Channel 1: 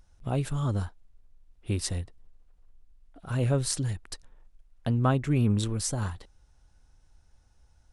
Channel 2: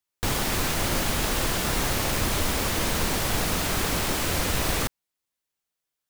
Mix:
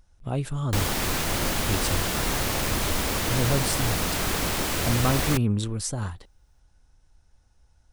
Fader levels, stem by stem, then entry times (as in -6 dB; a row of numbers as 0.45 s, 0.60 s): +0.5 dB, -0.5 dB; 0.00 s, 0.50 s